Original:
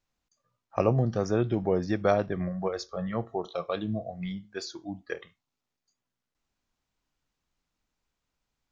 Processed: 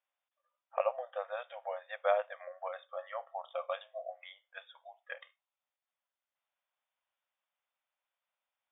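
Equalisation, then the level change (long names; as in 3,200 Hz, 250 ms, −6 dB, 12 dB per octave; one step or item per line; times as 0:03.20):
linear-phase brick-wall band-pass 500–3,700 Hz
−4.0 dB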